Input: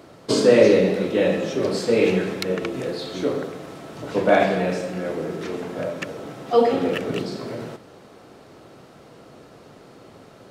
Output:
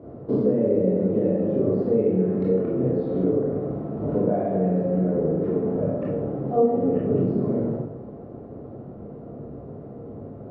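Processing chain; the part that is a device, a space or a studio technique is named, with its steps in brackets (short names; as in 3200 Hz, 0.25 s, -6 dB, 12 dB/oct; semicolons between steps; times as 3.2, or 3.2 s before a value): television next door (compressor 5:1, threshold -27 dBFS, peak gain reduction 16 dB; LPF 470 Hz 12 dB/oct; reverb RT60 0.70 s, pre-delay 19 ms, DRR -5.5 dB); gain +3 dB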